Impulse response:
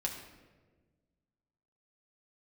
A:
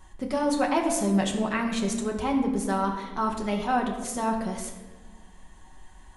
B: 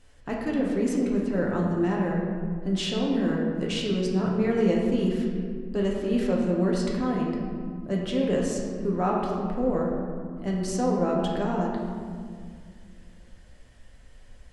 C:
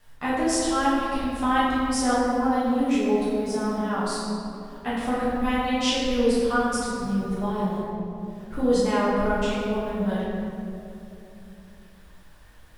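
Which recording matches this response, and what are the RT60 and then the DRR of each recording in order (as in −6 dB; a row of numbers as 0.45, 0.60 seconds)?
A; 1.4, 2.0, 2.9 seconds; −0.5, −3.0, −10.0 decibels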